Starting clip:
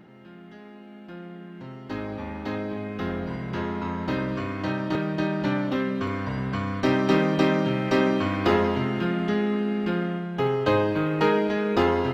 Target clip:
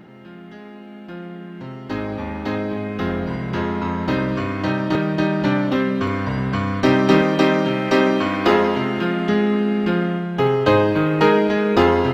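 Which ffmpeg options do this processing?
-filter_complex "[0:a]asettb=1/sr,asplit=3[a][b][c];[a]atrim=end=7.214[d];[b]atrim=start=7.21:end=9.29,asetpts=PTS-STARTPTS,afade=t=in:d=0.004:c=qsin,afade=t=out:st=2.076:d=0.004:c=qsin,equalizer=f=78:w=0.86:g=-12.5[e];[c]atrim=start=9.286[f];[d][e]acrossfade=d=0.004:c1=hsin:c2=qsin[g];[g][f]acrossfade=d=0.004:c1=qsin:c2=hsin,volume=6.5dB"

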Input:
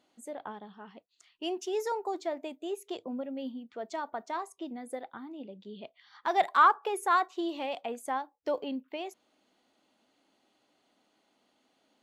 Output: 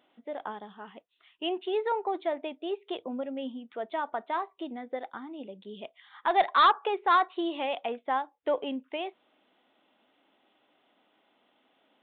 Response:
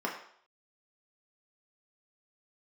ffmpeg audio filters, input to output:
-af "lowshelf=f=220:g=-9.5,aresample=8000,aeval=exprs='0.266*sin(PI/2*1.78*val(0)/0.266)':c=same,aresample=44100,volume=-4dB"

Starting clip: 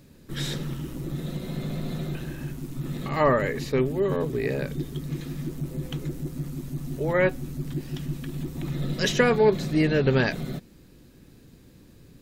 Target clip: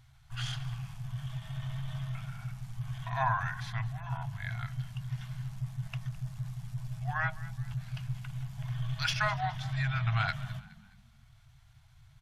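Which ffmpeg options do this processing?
-filter_complex "[0:a]aemphasis=mode=production:type=50fm,bandreject=f=60:t=h:w=6,bandreject=f=120:t=h:w=6,bandreject=f=180:t=h:w=6,bandreject=f=240:t=h:w=6,afftfilt=real='re*(1-between(b*sr/4096,170,720))':imag='im*(1-between(b*sr/4096,170,720))':win_size=4096:overlap=0.75,highshelf=f=4.5k:g=-8.5,asetrate=38170,aresample=44100,atempo=1.15535,adynamicsmooth=sensitivity=1.5:basefreq=5.6k,asplit=4[a][b][c][d];[b]adelay=210,afreqshift=32,volume=-18.5dB[e];[c]adelay=420,afreqshift=64,volume=-26dB[f];[d]adelay=630,afreqshift=96,volume=-33.6dB[g];[a][e][f][g]amix=inputs=4:normalize=0,volume=-3.5dB"

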